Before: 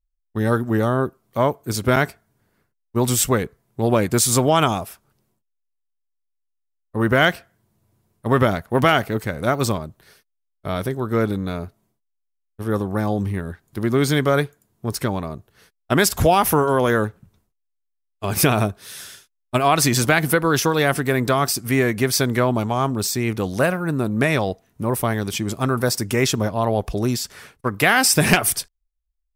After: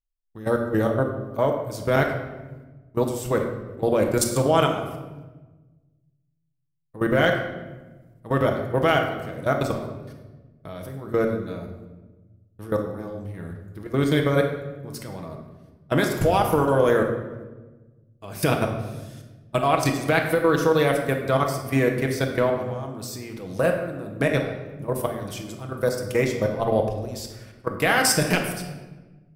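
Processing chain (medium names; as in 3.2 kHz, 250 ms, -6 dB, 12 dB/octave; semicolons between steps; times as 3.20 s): dynamic bell 520 Hz, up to +7 dB, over -34 dBFS, Q 2.6; level held to a coarse grid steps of 17 dB; on a send: reverberation RT60 1.2 s, pre-delay 6 ms, DRR 2 dB; on the sum: trim -3.5 dB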